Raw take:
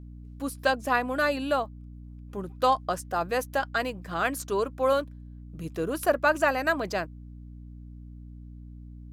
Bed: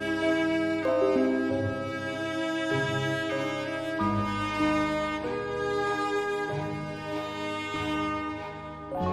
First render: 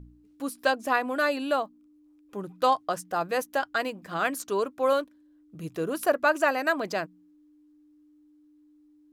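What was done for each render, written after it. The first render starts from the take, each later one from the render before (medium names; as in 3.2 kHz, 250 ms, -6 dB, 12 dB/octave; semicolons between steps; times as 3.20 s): de-hum 60 Hz, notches 4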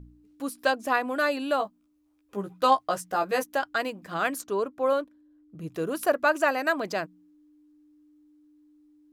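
1.58–3.44 s: doubling 15 ms -3.5 dB; 4.41–5.71 s: treble shelf 2.1 kHz -8 dB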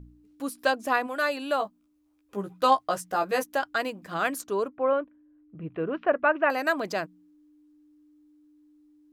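1.06–1.61 s: high-pass 640 Hz -> 240 Hz 6 dB/octave; 4.68–6.50 s: steep low-pass 2.8 kHz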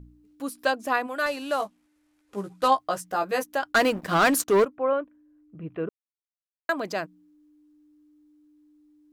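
1.26–2.68 s: CVSD coder 64 kbps; 3.72–4.65 s: waveshaping leveller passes 3; 5.89–6.69 s: mute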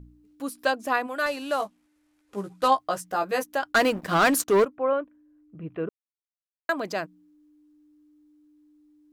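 no audible change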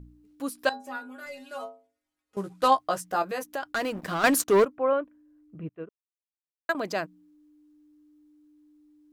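0.69–2.37 s: inharmonic resonator 82 Hz, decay 0.54 s, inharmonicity 0.008; 3.22–4.24 s: compression 2.5:1, threshold -30 dBFS; 5.69–6.75 s: upward expansion 2.5:1, over -39 dBFS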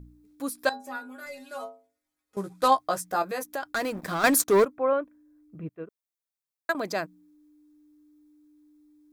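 treble shelf 7.8 kHz +6 dB; band-stop 2.9 kHz, Q 8.2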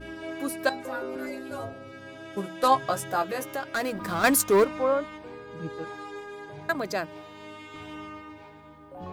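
add bed -11 dB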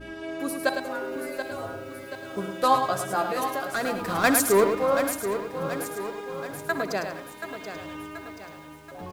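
on a send: multi-tap echo 63/105/191 ms -14/-7/-18.5 dB; on the sum: bit-crushed delay 730 ms, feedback 55%, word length 8-bit, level -9 dB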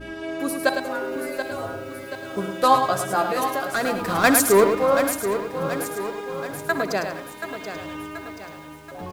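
trim +4 dB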